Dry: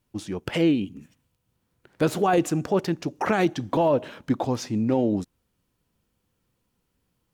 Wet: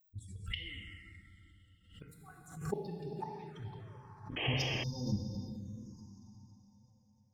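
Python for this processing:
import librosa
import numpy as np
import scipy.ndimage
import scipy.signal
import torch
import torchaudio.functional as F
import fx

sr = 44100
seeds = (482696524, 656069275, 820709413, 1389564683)

y = fx.bin_expand(x, sr, power=3.0)
y = fx.peak_eq(y, sr, hz=330.0, db=-8.5, octaves=2.0)
y = fx.gate_flip(y, sr, shuts_db=-28.0, range_db=-26)
y = fx.hum_notches(y, sr, base_hz=60, count=3)
y = fx.echo_bbd(y, sr, ms=394, stages=4096, feedback_pct=37, wet_db=-14)
y = fx.level_steps(y, sr, step_db=13)
y = fx.low_shelf(y, sr, hz=92.0, db=5.0)
y = fx.rev_plate(y, sr, seeds[0], rt60_s=3.8, hf_ratio=0.9, predelay_ms=0, drr_db=-0.5)
y = fx.spec_paint(y, sr, seeds[1], shape='noise', start_s=4.36, length_s=0.48, low_hz=280.0, high_hz=3300.0, level_db=-42.0)
y = fx.env_phaser(y, sr, low_hz=350.0, high_hz=1400.0, full_db=-44.5)
y = fx.notch(y, sr, hz=990.0, q=8.9)
y = fx.pre_swell(y, sr, db_per_s=100.0)
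y = y * librosa.db_to_amplitude(7.5)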